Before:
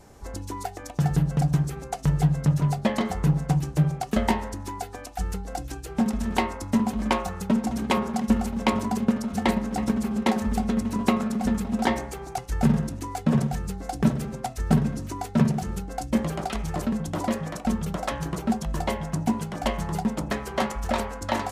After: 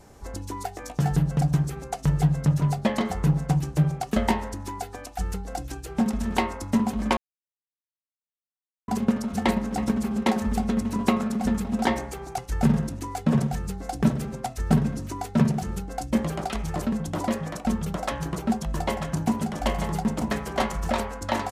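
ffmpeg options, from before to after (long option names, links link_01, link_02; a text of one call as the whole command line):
ffmpeg -i in.wav -filter_complex "[0:a]asettb=1/sr,asplit=3[link_01][link_02][link_03];[link_01]atrim=end=0.754[link_04];[link_02]atrim=start=0.75:end=1.16,asetpts=PTS-STARTPTS,afade=type=in:duration=0.004:curve=qsin,afade=type=out:start_time=0.406:duration=0.004:curve=qsin,asplit=2[link_05][link_06];[link_06]adelay=16,volume=-6dB[link_07];[link_05][link_07]amix=inputs=2:normalize=0,atrim=end_sample=18081[link_08];[link_03]atrim=start=1.156[link_09];[link_04][link_08]acrossfade=duration=0.004:curve1=hsin:curve2=qsin[link_10];[link_10][link_09]acrossfade=duration=0.004:curve1=qsin:curve2=hsin,asplit=3[link_11][link_12][link_13];[link_11]afade=type=out:start_time=18.87:duration=0.02[link_14];[link_12]aecho=1:1:942:0.447,afade=type=in:start_time=18.87:duration=0.02,afade=type=out:start_time=20.88:duration=0.02[link_15];[link_13]afade=type=in:start_time=20.88:duration=0.02[link_16];[link_14][link_15][link_16]amix=inputs=3:normalize=0,asplit=3[link_17][link_18][link_19];[link_17]atrim=end=7.17,asetpts=PTS-STARTPTS,afade=type=out:start_time=7.166:duration=0.004:curve=hsin[link_20];[link_18]atrim=start=7.17:end=8.88,asetpts=PTS-STARTPTS,volume=0[link_21];[link_19]atrim=start=8.88,asetpts=PTS-STARTPTS,afade=type=in:duration=0.004:curve=hsin[link_22];[link_20][link_21][link_22]concat=n=3:v=0:a=1" out.wav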